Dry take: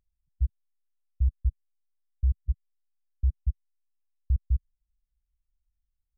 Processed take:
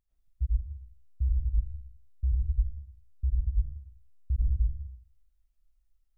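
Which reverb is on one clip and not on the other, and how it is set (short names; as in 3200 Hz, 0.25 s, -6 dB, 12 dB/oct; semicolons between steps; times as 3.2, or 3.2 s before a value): digital reverb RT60 0.48 s, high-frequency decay 0.4×, pre-delay 75 ms, DRR -7.5 dB; gain -4 dB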